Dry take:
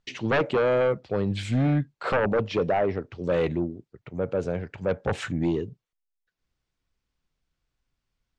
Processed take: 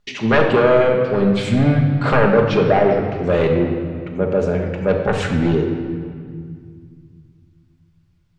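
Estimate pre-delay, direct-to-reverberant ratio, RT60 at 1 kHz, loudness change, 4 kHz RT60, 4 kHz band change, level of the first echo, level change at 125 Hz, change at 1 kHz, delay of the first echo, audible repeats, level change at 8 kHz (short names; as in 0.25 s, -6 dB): 5 ms, 1.0 dB, 2.1 s, +9.0 dB, 1.5 s, +8.5 dB, none, +10.0 dB, +9.5 dB, none, none, n/a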